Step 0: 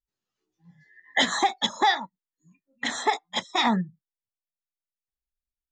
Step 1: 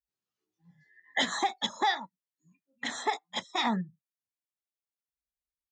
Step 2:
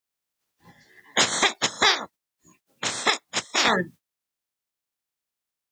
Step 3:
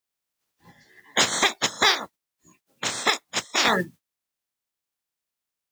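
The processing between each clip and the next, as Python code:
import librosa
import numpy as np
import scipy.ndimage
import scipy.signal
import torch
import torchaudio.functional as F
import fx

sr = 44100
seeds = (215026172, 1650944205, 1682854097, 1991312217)

y1 = scipy.signal.sosfilt(scipy.signal.butter(2, 42.0, 'highpass', fs=sr, output='sos'), x)
y1 = y1 * 10.0 ** (-6.0 / 20.0)
y2 = fx.spec_clip(y1, sr, under_db=26)
y2 = y2 * 10.0 ** (8.0 / 20.0)
y3 = fx.mod_noise(y2, sr, seeds[0], snr_db=25)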